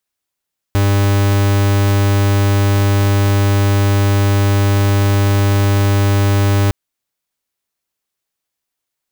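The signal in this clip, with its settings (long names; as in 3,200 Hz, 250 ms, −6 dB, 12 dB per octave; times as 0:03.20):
pulse wave 100 Hz, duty 43% −12.5 dBFS 5.96 s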